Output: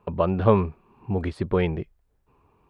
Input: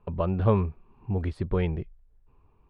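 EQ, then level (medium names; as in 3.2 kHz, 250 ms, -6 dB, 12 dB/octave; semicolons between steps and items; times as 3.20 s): high-pass 190 Hz 6 dB/octave; +6.5 dB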